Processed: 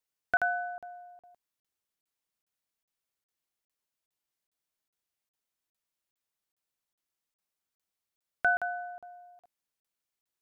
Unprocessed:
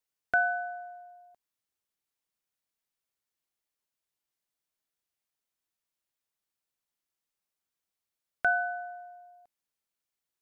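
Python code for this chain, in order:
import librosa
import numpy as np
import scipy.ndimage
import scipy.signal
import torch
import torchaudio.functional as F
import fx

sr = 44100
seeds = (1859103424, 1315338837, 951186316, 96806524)

y = fx.buffer_crackle(x, sr, first_s=0.37, period_s=0.41, block=2048, kind='zero')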